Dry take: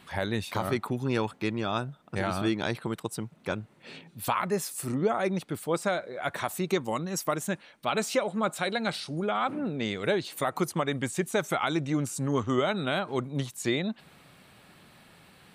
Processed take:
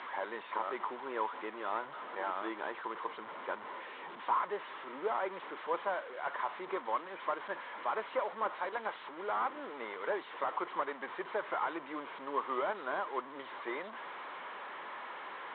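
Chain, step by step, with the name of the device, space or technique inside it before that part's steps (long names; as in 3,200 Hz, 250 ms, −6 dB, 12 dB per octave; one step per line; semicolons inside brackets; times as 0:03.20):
digital answering machine (band-pass filter 380–3,300 Hz; linear delta modulator 16 kbit/s, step −34.5 dBFS; loudspeaker in its box 420–4,100 Hz, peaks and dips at 700 Hz −4 dB, 1,000 Hz +9 dB, 2,600 Hz −9 dB, 3,900 Hz +5 dB)
level −4 dB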